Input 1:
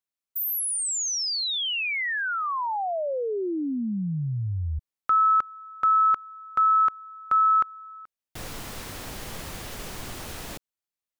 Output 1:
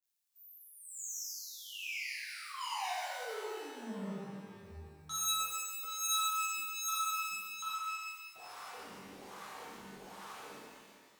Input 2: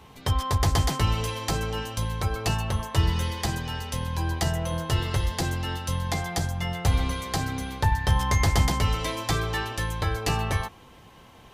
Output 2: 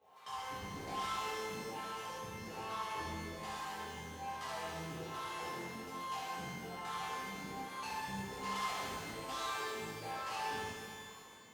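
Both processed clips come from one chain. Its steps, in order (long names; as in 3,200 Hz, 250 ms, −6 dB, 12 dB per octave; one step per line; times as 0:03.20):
in parallel at −9 dB: asymmetric clip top −28 dBFS
on the sum: LFO wah 1.2 Hz 200–1,200 Hz, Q 4.5
on a send: flutter between parallel walls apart 10.6 metres, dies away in 0.52 s
on the sum: soft clipping −34.5 dBFS
surface crackle 50 per second −68 dBFS
first-order pre-emphasis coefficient 0.9
reverb with rising layers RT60 1.9 s, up +12 semitones, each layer −8 dB, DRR −10.5 dB
level +3 dB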